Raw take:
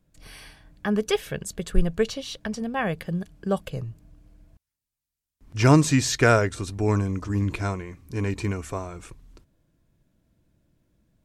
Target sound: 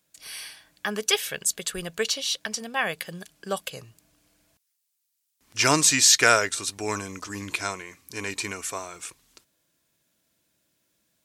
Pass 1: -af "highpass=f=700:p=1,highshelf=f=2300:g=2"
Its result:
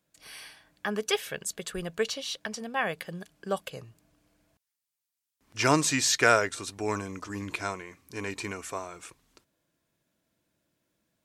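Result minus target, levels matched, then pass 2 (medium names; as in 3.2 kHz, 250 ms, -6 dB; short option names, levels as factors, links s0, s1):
4 kHz band -2.5 dB
-af "highpass=f=700:p=1,highshelf=f=2300:g=12.5"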